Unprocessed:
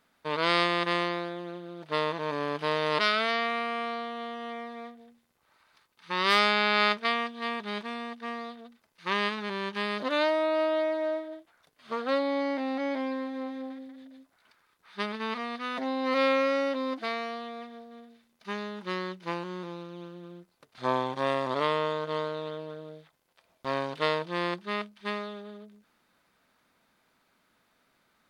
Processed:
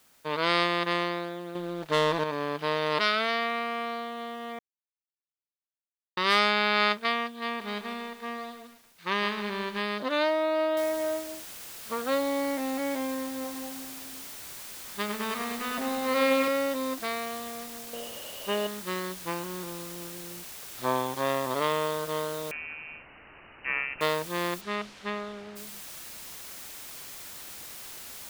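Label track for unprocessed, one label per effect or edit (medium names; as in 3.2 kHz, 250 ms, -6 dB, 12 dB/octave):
1.550000	2.240000	waveshaping leveller passes 2
4.590000	6.170000	mute
7.460000	9.800000	bit-crushed delay 151 ms, feedback 55%, word length 8-bit, level -10.5 dB
10.770000	10.770000	noise floor step -62 dB -43 dB
13.340000	16.480000	bit-crushed delay 101 ms, feedback 80%, word length 8-bit, level -8 dB
17.930000	18.670000	small resonant body resonances 550/2900 Hz, height 17 dB, ringing for 20 ms
22.510000	24.010000	frequency inversion carrier 2.9 kHz
24.600000	25.550000	low-pass 5.2 kHz -> 2.6 kHz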